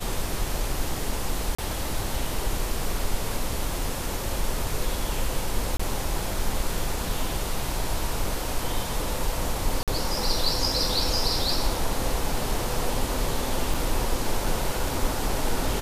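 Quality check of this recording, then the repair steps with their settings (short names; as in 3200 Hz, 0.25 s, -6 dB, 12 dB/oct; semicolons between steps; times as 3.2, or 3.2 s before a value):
1.55–1.58 gap 35 ms
5.77–5.79 gap 25 ms
9.83–9.88 gap 47 ms
13.74 gap 4.1 ms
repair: interpolate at 1.55, 35 ms; interpolate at 5.77, 25 ms; interpolate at 9.83, 47 ms; interpolate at 13.74, 4.1 ms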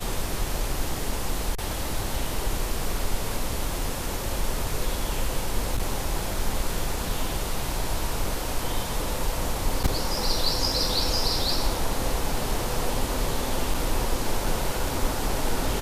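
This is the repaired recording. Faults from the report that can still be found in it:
none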